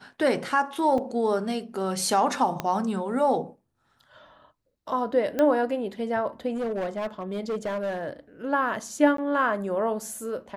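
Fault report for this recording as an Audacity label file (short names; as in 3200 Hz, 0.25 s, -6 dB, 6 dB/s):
0.980000	0.980000	gap 3.4 ms
2.600000	2.600000	pop -13 dBFS
5.390000	5.390000	pop -13 dBFS
6.550000	8.080000	clipped -25 dBFS
9.170000	9.180000	gap 13 ms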